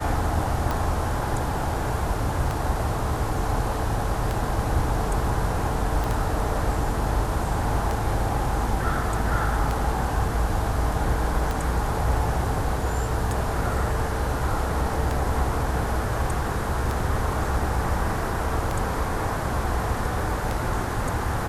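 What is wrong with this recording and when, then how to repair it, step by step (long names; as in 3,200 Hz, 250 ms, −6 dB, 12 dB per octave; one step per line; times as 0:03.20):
scratch tick 33 1/3 rpm
0:06.04: click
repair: click removal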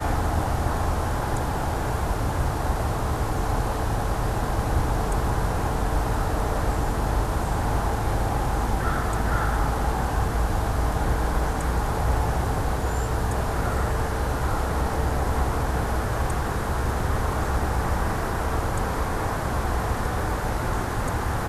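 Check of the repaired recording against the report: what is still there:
none of them is left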